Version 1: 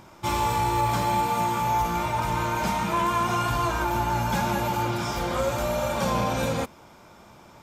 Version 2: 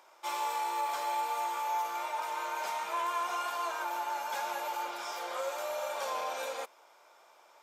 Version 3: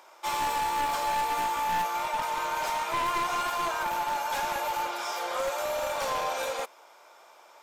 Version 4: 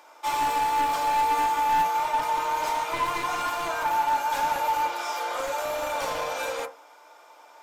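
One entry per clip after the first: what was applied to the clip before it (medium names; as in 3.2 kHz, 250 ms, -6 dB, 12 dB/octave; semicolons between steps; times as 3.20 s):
high-pass 490 Hz 24 dB/octave; trim -8 dB
one-sided wavefolder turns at -31 dBFS; trim +6 dB
FDN reverb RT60 0.31 s, low-frequency decay 0.95×, high-frequency decay 0.35×, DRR 3 dB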